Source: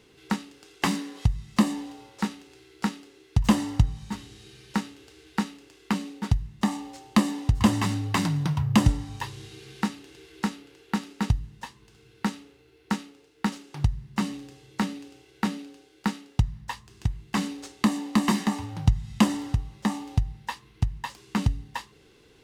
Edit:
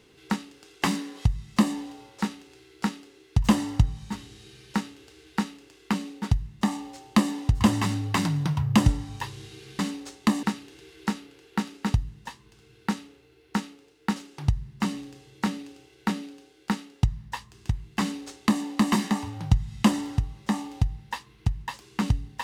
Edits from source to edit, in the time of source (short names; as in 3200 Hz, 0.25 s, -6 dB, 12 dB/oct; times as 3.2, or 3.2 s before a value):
17.36–18 copy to 9.79